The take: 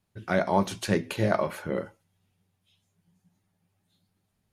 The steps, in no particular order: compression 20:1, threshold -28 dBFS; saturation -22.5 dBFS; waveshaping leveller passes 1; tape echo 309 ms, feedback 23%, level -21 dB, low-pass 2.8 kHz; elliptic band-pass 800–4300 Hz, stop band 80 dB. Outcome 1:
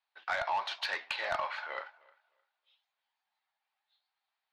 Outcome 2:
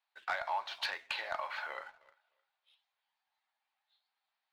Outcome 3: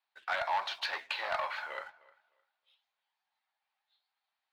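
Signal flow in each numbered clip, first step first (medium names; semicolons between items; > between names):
waveshaping leveller > tape echo > elliptic band-pass > saturation > compression; tape echo > compression > elliptic band-pass > saturation > waveshaping leveller; saturation > elliptic band-pass > compression > waveshaping leveller > tape echo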